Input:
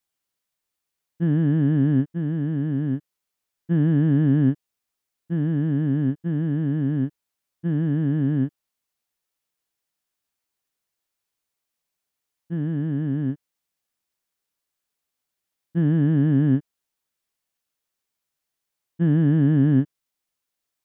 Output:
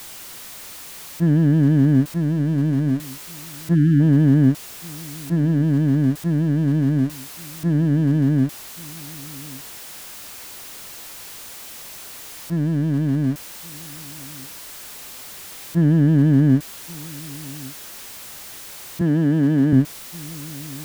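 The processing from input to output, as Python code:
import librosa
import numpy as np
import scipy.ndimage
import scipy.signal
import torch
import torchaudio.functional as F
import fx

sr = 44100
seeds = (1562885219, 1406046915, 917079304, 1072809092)

y = x + 0.5 * 10.0 ** (-34.5 / 20.0) * np.sign(x)
y = y + 10.0 ** (-21.5 / 20.0) * np.pad(y, (int(1129 * sr / 1000.0), 0))[:len(y)]
y = fx.spec_box(y, sr, start_s=3.74, length_s=0.26, low_hz=340.0, high_hz=1300.0, gain_db=-28)
y = fx.highpass(y, sr, hz=200.0, slope=12, at=(19.01, 19.73))
y = F.gain(torch.from_numpy(y), 3.5).numpy()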